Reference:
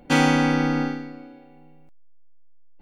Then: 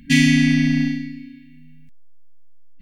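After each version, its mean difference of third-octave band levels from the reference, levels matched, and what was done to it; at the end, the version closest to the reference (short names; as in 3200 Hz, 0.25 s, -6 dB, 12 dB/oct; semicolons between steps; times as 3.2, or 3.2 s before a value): 6.0 dB: FFT band-reject 280–1600 Hz; in parallel at -11.5 dB: soft clip -26.5 dBFS, distortion -7 dB; on the sum: gain +5 dB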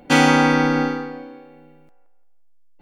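1.5 dB: low shelf 130 Hz -9 dB; on a send: band-limited delay 0.172 s, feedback 36%, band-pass 940 Hz, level -6 dB; on the sum: gain +5 dB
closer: second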